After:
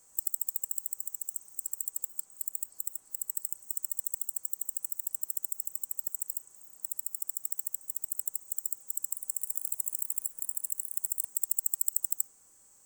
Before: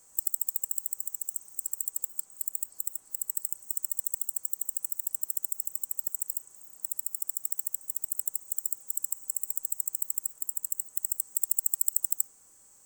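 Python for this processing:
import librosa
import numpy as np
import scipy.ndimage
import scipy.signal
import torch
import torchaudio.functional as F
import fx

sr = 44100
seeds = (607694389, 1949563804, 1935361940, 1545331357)

y = fx.echo_pitch(x, sr, ms=204, semitones=3, count=2, db_per_echo=-6.0, at=(8.92, 11.51))
y = y * librosa.db_to_amplitude(-2.5)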